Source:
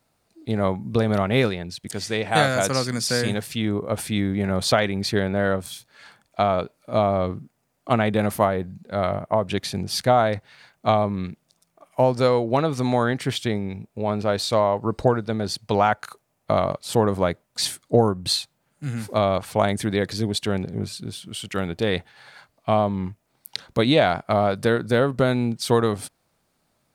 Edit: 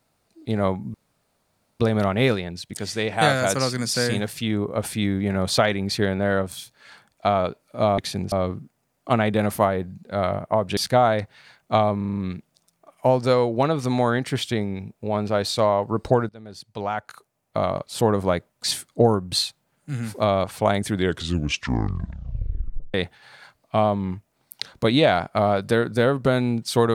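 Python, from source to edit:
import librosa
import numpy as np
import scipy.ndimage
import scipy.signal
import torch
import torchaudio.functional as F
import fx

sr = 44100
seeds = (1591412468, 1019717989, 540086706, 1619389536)

y = fx.edit(x, sr, fx.insert_room_tone(at_s=0.94, length_s=0.86),
    fx.move(start_s=9.57, length_s=0.34, to_s=7.12),
    fx.stutter(start_s=11.11, slice_s=0.04, count=6),
    fx.fade_in_from(start_s=15.23, length_s=1.84, floor_db=-20.5),
    fx.tape_stop(start_s=19.81, length_s=2.07), tone=tone)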